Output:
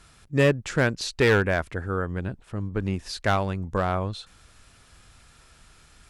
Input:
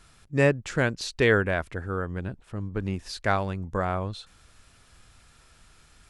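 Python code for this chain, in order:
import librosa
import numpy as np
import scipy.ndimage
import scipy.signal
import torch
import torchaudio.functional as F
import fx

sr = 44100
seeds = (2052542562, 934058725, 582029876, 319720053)

y = fx.clip_asym(x, sr, top_db=-18.5, bottom_db=-13.0)
y = y * librosa.db_to_amplitude(2.5)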